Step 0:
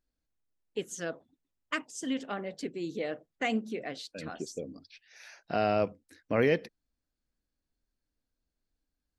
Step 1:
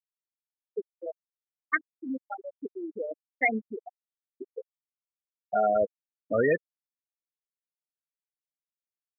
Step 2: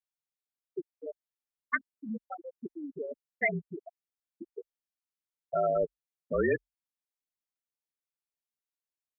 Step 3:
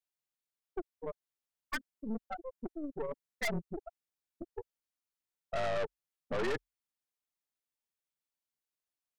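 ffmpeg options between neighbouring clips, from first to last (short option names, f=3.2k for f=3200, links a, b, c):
-af "afftfilt=real='re*gte(hypot(re,im),0.126)':imag='im*gte(hypot(re,im),0.126)':win_size=1024:overlap=0.75,tiltshelf=f=720:g=-8.5,volume=5.5dB"
-af "afreqshift=-46,volume=-3.5dB"
-af "aeval=exprs='(tanh(63.1*val(0)+0.8)-tanh(0.8))/63.1':c=same,volume=4.5dB"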